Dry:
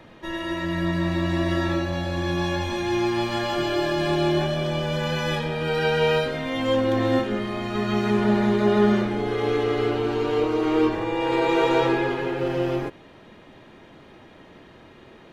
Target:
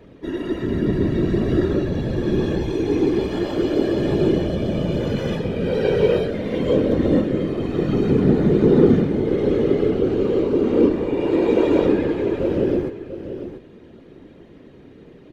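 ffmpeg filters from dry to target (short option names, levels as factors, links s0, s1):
-af "afftfilt=real='hypot(re,im)*cos(2*PI*random(0))':imag='hypot(re,im)*sin(2*PI*random(1))':win_size=512:overlap=0.75,lowshelf=f=590:t=q:w=1.5:g=9.5,aecho=1:1:690:0.282"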